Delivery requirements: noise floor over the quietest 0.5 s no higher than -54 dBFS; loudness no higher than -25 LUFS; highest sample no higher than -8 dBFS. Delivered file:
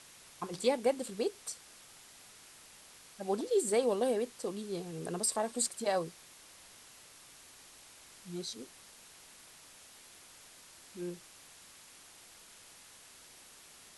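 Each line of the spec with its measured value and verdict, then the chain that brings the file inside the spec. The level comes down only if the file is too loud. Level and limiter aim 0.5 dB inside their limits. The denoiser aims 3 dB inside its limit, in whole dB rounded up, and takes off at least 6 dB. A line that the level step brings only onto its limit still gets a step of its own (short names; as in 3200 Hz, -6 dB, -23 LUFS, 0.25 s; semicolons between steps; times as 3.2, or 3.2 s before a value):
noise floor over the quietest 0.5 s -56 dBFS: OK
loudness -34.5 LUFS: OK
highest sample -16.5 dBFS: OK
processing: none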